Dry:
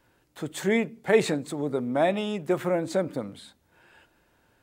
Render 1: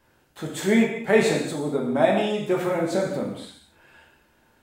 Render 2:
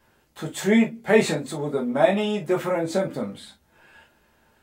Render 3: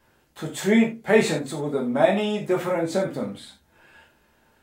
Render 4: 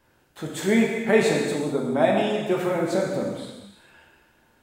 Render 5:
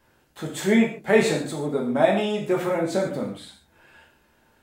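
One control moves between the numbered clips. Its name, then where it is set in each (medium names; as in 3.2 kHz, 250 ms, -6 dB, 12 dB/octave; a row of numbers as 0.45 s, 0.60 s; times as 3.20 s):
gated-style reverb, gate: 280 ms, 80 ms, 120 ms, 470 ms, 180 ms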